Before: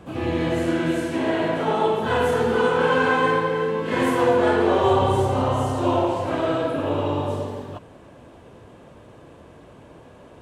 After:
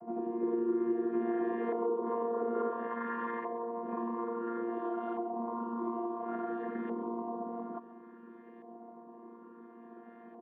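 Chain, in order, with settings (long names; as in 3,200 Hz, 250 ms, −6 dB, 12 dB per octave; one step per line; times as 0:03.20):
channel vocoder with a chord as carrier bare fifth, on A#3
auto-filter low-pass saw up 0.58 Hz 810–1,900 Hz
downward compressor 6 to 1, threshold −29 dBFS, peak gain reduction 15 dB
0:00.41–0:02.72: parametric band 410 Hz +9.5 dB 0.53 octaves
single-tap delay 134 ms −15.5 dB
level −5 dB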